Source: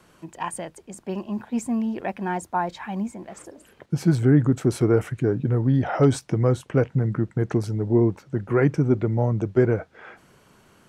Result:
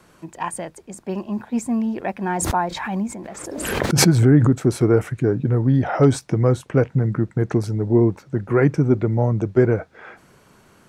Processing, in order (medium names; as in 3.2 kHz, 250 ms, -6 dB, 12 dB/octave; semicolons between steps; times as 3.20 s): peaking EQ 3 kHz -4 dB 0.23 oct; 2.23–4.52 s: swell ahead of each attack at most 35 dB/s; trim +3 dB